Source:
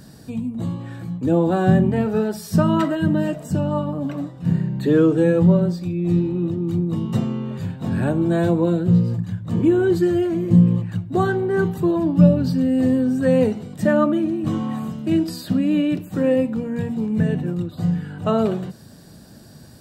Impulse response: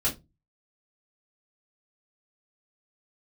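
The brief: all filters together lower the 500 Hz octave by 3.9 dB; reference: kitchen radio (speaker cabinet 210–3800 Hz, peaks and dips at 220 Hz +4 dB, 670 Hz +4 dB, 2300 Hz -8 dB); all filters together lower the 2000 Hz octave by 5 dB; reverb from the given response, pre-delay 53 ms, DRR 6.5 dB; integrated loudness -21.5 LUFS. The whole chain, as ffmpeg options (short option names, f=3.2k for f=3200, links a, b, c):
-filter_complex "[0:a]equalizer=f=500:t=o:g=-6,equalizer=f=2k:t=o:g=-5,asplit=2[a][b];[1:a]atrim=start_sample=2205,adelay=53[c];[b][c]afir=irnorm=-1:irlink=0,volume=-15dB[d];[a][d]amix=inputs=2:normalize=0,highpass=210,equalizer=f=220:t=q:w=4:g=4,equalizer=f=670:t=q:w=4:g=4,equalizer=f=2.3k:t=q:w=4:g=-8,lowpass=f=3.8k:w=0.5412,lowpass=f=3.8k:w=1.3066"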